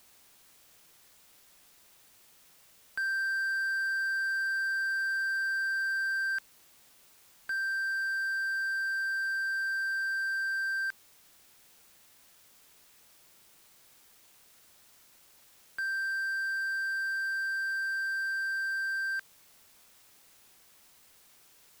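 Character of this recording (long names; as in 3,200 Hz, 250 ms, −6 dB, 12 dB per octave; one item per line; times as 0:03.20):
a quantiser's noise floor 10 bits, dither triangular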